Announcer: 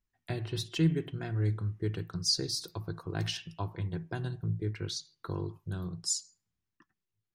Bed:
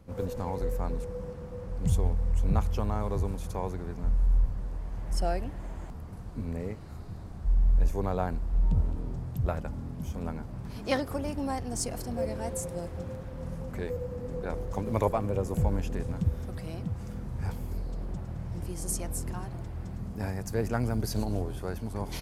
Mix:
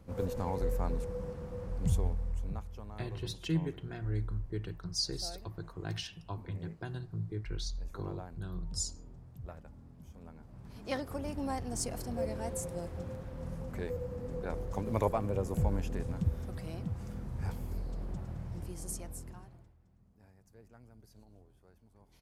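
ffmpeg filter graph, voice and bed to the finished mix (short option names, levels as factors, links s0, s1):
-filter_complex "[0:a]adelay=2700,volume=0.562[s0];[1:a]volume=3.76,afade=t=out:st=1.66:d=0.97:silence=0.177828,afade=t=in:st=10.33:d=1.2:silence=0.223872,afade=t=out:st=18.28:d=1.49:silence=0.0562341[s1];[s0][s1]amix=inputs=2:normalize=0"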